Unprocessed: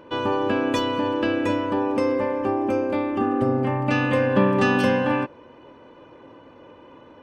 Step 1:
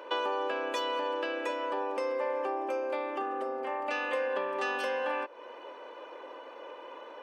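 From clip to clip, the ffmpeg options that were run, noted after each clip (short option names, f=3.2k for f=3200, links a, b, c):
-af "acompressor=threshold=-32dB:ratio=4,highpass=f=440:w=0.5412,highpass=f=440:w=1.3066,volume=4dB"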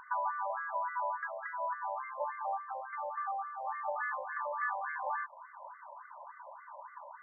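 -af "afftfilt=real='re*between(b*sr/1024,740*pow(1600/740,0.5+0.5*sin(2*PI*3.5*pts/sr))/1.41,740*pow(1600/740,0.5+0.5*sin(2*PI*3.5*pts/sr))*1.41)':imag='im*between(b*sr/1024,740*pow(1600/740,0.5+0.5*sin(2*PI*3.5*pts/sr))/1.41,740*pow(1600/740,0.5+0.5*sin(2*PI*3.5*pts/sr))*1.41)':win_size=1024:overlap=0.75,volume=1.5dB"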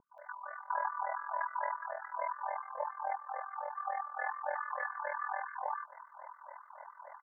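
-filter_complex "[0:a]acrossover=split=450|1400[a][b][c];[c]adelay=180[d];[b]adelay=590[e];[a][e][d]amix=inputs=3:normalize=0,tremolo=f=41:d=0.824,volume=4.5dB"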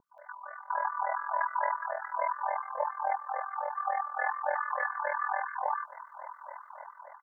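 -af "dynaudnorm=f=560:g=3:m=6dB"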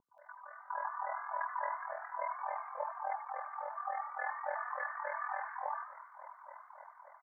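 -filter_complex "[0:a]asplit=6[a][b][c][d][e][f];[b]adelay=84,afreqshift=74,volume=-11dB[g];[c]adelay=168,afreqshift=148,volume=-17dB[h];[d]adelay=252,afreqshift=222,volume=-23dB[i];[e]adelay=336,afreqshift=296,volume=-29.1dB[j];[f]adelay=420,afreqshift=370,volume=-35.1dB[k];[a][g][h][i][j][k]amix=inputs=6:normalize=0,volume=-7.5dB"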